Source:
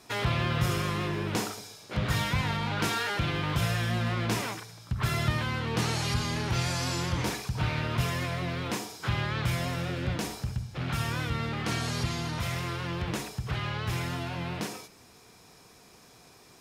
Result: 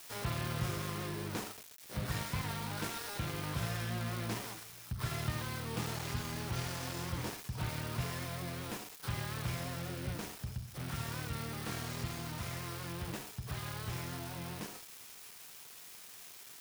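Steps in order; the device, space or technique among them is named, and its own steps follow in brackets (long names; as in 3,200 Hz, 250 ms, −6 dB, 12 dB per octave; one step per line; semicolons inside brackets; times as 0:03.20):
budget class-D amplifier (gap after every zero crossing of 0.21 ms; spike at every zero crossing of −25 dBFS)
level −8.5 dB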